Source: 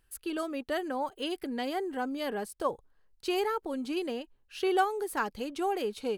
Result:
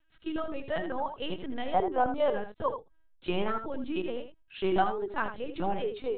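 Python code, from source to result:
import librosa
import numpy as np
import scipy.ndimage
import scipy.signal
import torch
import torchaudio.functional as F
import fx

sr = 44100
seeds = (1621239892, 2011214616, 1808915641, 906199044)

p1 = fx.lpc_vocoder(x, sr, seeds[0], excitation='pitch_kept', order=10)
p2 = fx.band_shelf(p1, sr, hz=720.0, db=10.0, octaves=1.7, at=(1.73, 2.33))
y = p2 + fx.echo_single(p2, sr, ms=80, db=-9.5, dry=0)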